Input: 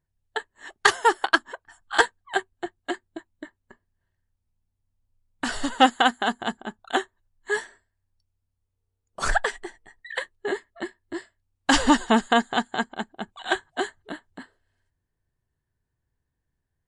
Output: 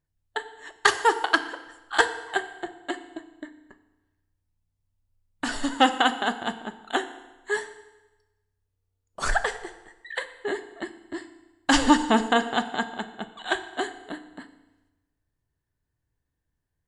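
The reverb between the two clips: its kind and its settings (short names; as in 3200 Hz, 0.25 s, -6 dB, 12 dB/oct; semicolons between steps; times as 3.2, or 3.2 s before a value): FDN reverb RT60 1.1 s, low-frequency decay 1×, high-frequency decay 0.9×, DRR 9 dB; gain -1.5 dB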